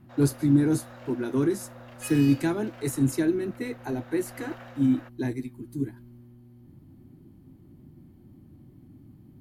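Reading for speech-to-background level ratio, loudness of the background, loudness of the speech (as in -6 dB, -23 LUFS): 19.5 dB, -46.5 LUFS, -27.0 LUFS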